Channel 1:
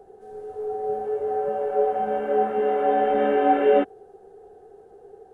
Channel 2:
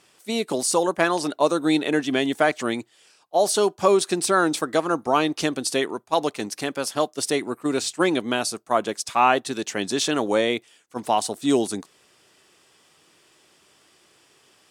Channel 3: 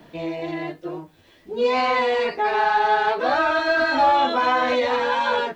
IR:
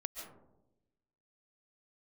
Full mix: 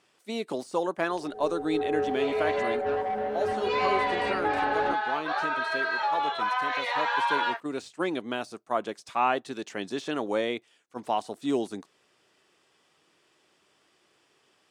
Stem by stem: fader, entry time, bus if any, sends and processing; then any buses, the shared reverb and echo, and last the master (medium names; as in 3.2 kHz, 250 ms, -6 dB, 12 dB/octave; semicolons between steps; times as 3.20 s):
-0.5 dB, 1.10 s, no send, saturation -24 dBFS, distortion -8 dB; attacks held to a fixed rise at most 110 dB/s
-10.0 dB, 0.00 s, no send, de-esser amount 60%; bass shelf 110 Hz -7.5 dB
+1.0 dB, 2.05 s, no send, inverse Chebyshev high-pass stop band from 180 Hz, stop band 70 dB; compression, threshold -23 dBFS, peak gain reduction 7 dB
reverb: none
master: low-pass 3.7 kHz 6 dB/octave; gain riding within 4 dB 2 s